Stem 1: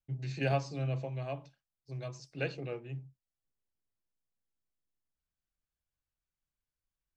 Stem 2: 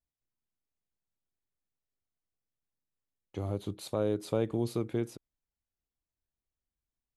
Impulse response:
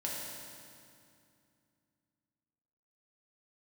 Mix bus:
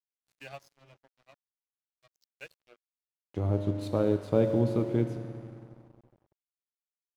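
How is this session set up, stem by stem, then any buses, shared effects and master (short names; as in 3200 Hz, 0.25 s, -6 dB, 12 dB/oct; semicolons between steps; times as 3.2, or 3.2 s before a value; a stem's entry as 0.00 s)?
-11.0 dB, 0.00 s, send -20 dB, per-bin expansion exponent 1.5; AGC gain up to 3 dB; tilt +4.5 dB/oct
0.0 dB, 0.00 s, send -5 dB, transient shaper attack -1 dB, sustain -5 dB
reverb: on, RT60 2.4 s, pre-delay 3 ms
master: LPF 3000 Hz 6 dB/oct; low shelf 380 Hz +3.5 dB; crossover distortion -51 dBFS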